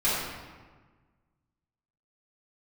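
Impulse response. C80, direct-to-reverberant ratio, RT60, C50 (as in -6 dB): 1.0 dB, -11.5 dB, 1.4 s, -1.5 dB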